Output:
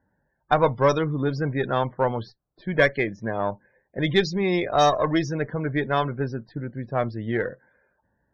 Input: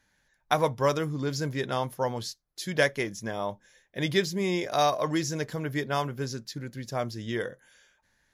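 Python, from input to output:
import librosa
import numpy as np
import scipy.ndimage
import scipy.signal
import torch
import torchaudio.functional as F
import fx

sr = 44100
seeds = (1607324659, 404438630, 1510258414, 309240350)

p1 = scipy.signal.sosfilt(scipy.signal.butter(2, 55.0, 'highpass', fs=sr, output='sos'), x)
p2 = fx.cheby_harmonics(p1, sr, harmonics=(2, 6), levels_db=(-25, -22), full_scale_db=-8.0)
p3 = fx.env_lowpass(p2, sr, base_hz=840.0, full_db=-18.0)
p4 = fx.spec_topn(p3, sr, count=64)
p5 = 10.0 ** (-19.5 / 20.0) * np.tanh(p4 / 10.0 ** (-19.5 / 20.0))
p6 = p4 + (p5 * librosa.db_to_amplitude(-7.0))
y = p6 * librosa.db_to_amplitude(2.5)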